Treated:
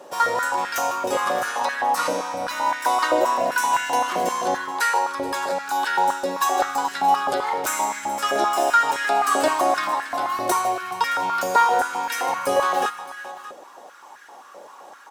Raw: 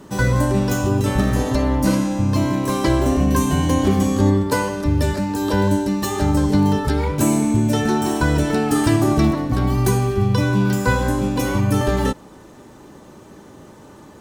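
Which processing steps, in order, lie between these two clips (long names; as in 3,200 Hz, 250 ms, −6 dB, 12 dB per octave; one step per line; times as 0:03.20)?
multi-tap delay 140/146/402/583 ms −19.5/−18/−17.5/−16.5 dB
speed change −6%
high-pass on a step sequencer 7.7 Hz 580–1,600 Hz
level −1 dB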